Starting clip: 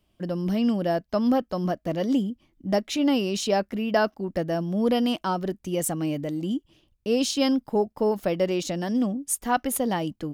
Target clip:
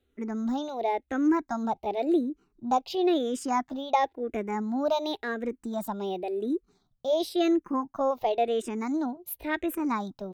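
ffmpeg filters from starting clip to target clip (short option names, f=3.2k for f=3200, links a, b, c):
-filter_complex "[0:a]asetrate=55563,aresample=44100,atempo=0.793701,bass=f=250:g=-2,treble=f=4k:g=-8,asplit=2[a][b];[b]afreqshift=-0.94[c];[a][c]amix=inputs=2:normalize=1"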